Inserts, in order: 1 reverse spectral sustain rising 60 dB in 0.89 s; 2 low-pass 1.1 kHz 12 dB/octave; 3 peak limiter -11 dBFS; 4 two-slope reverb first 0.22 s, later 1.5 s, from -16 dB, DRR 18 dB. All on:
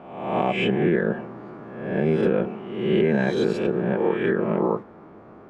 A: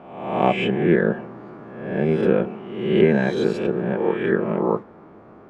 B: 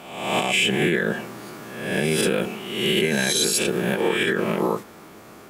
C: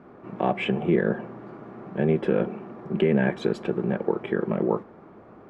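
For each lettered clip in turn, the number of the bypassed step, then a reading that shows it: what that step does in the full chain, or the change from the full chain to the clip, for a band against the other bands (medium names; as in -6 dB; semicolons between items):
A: 3, crest factor change +5.0 dB; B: 2, 4 kHz band +15.5 dB; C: 1, 4 kHz band -2.0 dB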